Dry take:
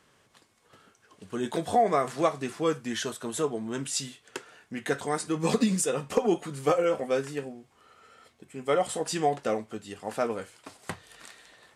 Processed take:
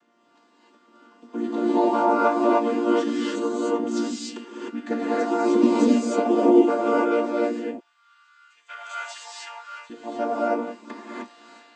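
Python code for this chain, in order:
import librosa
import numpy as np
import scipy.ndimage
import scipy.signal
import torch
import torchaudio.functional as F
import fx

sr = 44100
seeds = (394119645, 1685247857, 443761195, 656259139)

y = fx.chord_vocoder(x, sr, chord='major triad', root=58)
y = fx.highpass(y, sr, hz=1400.0, slope=24, at=(7.48, 9.9))
y = fx.rev_gated(y, sr, seeds[0], gate_ms=330, shape='rising', drr_db=-7.5)
y = F.gain(torch.from_numpy(y), 1.5).numpy()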